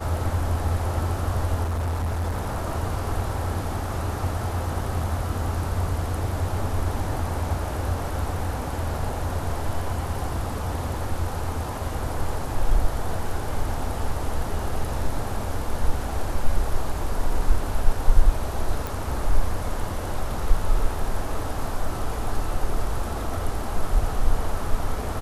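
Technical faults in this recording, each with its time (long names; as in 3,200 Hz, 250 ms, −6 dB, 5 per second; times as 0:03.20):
0:01.63–0:02.63: clipping −22.5 dBFS
0:18.87: click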